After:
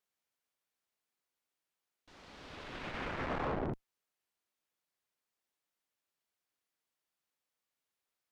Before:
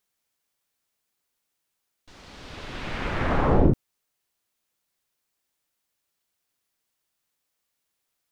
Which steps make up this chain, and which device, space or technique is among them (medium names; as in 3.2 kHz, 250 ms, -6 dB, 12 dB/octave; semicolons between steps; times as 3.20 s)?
tube preamp driven hard (valve stage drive 25 dB, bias 0.35; bass shelf 160 Hz -8 dB; treble shelf 4.1 kHz -7 dB); trim -5 dB